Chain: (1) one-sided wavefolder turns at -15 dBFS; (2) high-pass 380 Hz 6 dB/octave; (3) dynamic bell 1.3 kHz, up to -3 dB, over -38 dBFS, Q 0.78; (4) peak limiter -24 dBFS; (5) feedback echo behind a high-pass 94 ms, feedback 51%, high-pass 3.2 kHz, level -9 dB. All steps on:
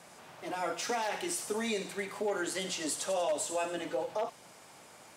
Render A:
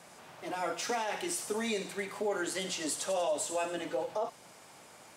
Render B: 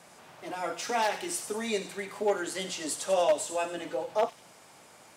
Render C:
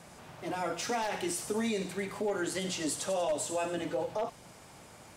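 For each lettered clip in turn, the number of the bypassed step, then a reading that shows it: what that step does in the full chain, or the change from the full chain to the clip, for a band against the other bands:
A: 1, distortion -18 dB; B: 4, crest factor change +5.0 dB; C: 2, 125 Hz band +7.5 dB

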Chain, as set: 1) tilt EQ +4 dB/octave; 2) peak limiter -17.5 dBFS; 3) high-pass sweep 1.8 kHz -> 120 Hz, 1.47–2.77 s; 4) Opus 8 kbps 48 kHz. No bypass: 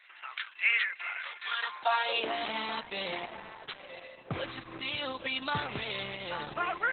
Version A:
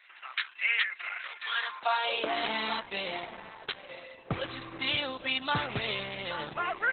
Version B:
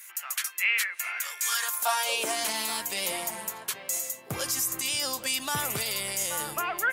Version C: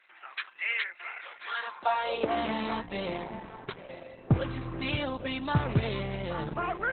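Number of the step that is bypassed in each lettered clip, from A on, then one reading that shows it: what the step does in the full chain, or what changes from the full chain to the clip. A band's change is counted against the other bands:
2, crest factor change -1.5 dB; 4, 4 kHz band +3.5 dB; 1, 125 Hz band +13.5 dB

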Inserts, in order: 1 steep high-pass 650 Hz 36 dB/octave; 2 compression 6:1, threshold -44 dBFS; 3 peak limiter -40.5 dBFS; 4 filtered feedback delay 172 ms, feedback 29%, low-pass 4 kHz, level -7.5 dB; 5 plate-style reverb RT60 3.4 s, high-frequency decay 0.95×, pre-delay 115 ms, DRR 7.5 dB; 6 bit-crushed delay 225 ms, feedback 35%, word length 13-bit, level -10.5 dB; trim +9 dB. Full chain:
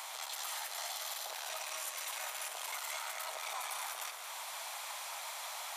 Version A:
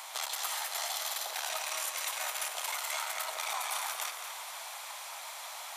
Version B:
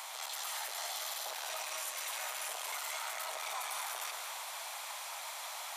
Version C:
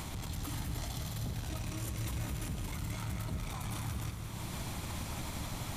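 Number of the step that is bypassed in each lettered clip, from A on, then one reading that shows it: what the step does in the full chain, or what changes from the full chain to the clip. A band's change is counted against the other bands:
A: 3, mean gain reduction 3.0 dB; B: 2, mean gain reduction 10.0 dB; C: 1, 500 Hz band +5.5 dB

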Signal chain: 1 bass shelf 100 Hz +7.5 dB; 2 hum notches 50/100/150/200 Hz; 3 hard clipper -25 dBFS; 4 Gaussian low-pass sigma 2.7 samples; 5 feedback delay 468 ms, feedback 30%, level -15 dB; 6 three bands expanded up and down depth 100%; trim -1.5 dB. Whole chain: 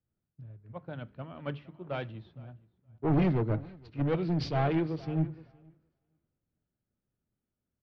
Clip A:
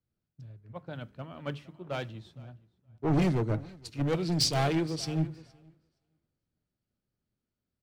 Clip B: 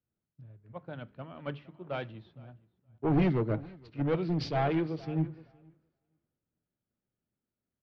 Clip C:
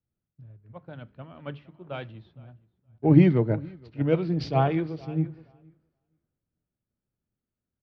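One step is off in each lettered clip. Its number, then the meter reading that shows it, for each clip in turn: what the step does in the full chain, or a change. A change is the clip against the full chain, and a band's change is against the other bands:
4, 4 kHz band +13.0 dB; 1, 125 Hz band -2.0 dB; 3, distortion -8 dB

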